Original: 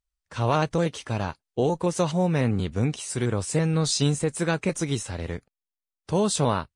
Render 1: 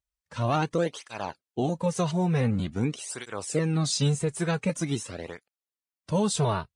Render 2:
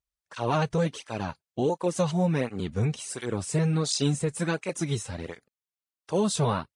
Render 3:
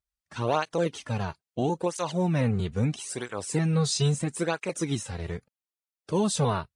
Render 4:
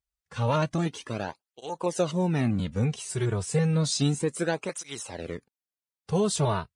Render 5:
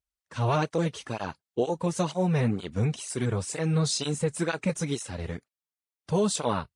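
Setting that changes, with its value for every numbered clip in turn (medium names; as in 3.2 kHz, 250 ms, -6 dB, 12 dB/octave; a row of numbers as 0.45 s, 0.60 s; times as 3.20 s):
cancelling through-zero flanger, nulls at: 0.46 Hz, 1.4 Hz, 0.76 Hz, 0.31 Hz, 2.1 Hz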